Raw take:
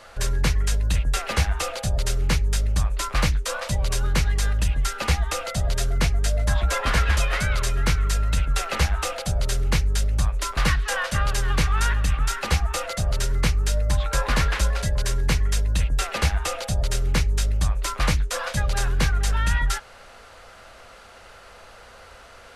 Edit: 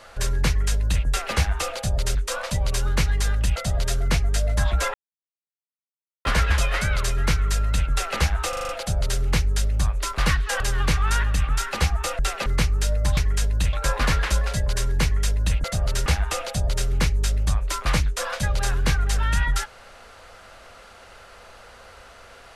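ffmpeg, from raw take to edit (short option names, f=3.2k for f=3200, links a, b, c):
-filter_complex "[0:a]asplit=16[a][b][c][d][e][f][g][h][i][j][k][l][m][n][o][p];[a]atrim=end=2.152[q];[b]atrim=start=3.328:end=4.742[r];[c]atrim=start=5.458:end=6.84,asetpts=PTS-STARTPTS,afade=t=out:st=1.378:d=0.004:c=hsin,apad=pad_dur=1.31[s];[d]atrim=start=6.84:end=9.122,asetpts=PTS-STARTPTS,afade=t=in:d=0.004:c=hsin[t];[e]atrim=start=9.078:end=9.122[u];[f]atrim=start=9.078:end=9.122[v];[g]atrim=start=9.078:end=9.122[w];[h]atrim=start=9.078:end=9.122[x];[i]atrim=start=9.078:end=10.992[y];[j]atrim=start=11.298:end=12.892[z];[k]atrim=start=15.928:end=16.202[aa];[l]atrim=start=13.308:end=14.022[ab];[m]atrim=start=0.468:end=1.032[ac];[n]atrim=start=14.018:end=15.932[ad];[o]atrim=start=12.888:end=13.312[ae];[p]atrim=start=16.198[af];[q][r]acrossfade=d=0.004:c1=hsin:c2=hsin[ag];[s][t]concat=n=2:v=0:a=1[ah];[ag][ah]acrossfade=d=0.004:c1=hsin:c2=hsin[ai];[ai][u]acrossfade=d=0.004:c1=hsin:c2=hsin[aj];[aj][v]acrossfade=d=0.004:c1=hsin:c2=hsin[ak];[ak][w]acrossfade=d=0.004:c1=hsin:c2=hsin[al];[al][x]acrossfade=d=0.004:c1=hsin:c2=hsin[am];[am][y]acrossfade=d=0.004:c1=hsin:c2=hsin[an];[an][z]acrossfade=d=0.004:c1=hsin:c2=hsin[ao];[ao][aa]acrossfade=d=0.004:c1=hsin:c2=hsin[ap];[ap][ab]acrossfade=d=0.004:c1=hsin:c2=hsin[aq];[aq][ac]acrossfade=d=0.004:c1=hsin:c2=hsin[ar];[ar][ad]acrossfade=d=0.004:c1=hsin:c2=hsin[as];[as][ae]acrossfade=d=0.004:c1=hsin:c2=hsin[at];[at][af]acrossfade=d=0.004:c1=hsin:c2=hsin"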